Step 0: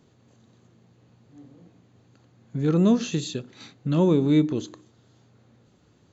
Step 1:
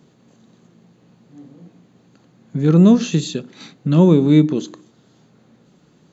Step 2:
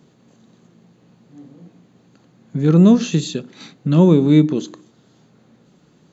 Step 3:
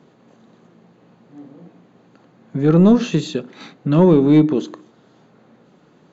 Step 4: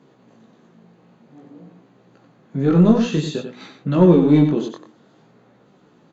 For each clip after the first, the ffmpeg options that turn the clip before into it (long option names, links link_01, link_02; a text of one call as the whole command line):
ffmpeg -i in.wav -af "lowshelf=frequency=130:width_type=q:width=3:gain=-6,volume=5.5dB" out.wav
ffmpeg -i in.wav -af anull out.wav
ffmpeg -i in.wav -filter_complex "[0:a]asplit=2[link_01][link_02];[link_02]highpass=frequency=720:poles=1,volume=15dB,asoftclip=type=tanh:threshold=-1dB[link_03];[link_01][link_03]amix=inputs=2:normalize=0,lowpass=frequency=1000:poles=1,volume=-6dB" out.wav
ffmpeg -i in.wav -filter_complex "[0:a]flanger=delay=15:depth=7.9:speed=0.53,asplit=2[link_01][link_02];[link_02]aecho=0:1:93:0.398[link_03];[link_01][link_03]amix=inputs=2:normalize=0,volume=1dB" out.wav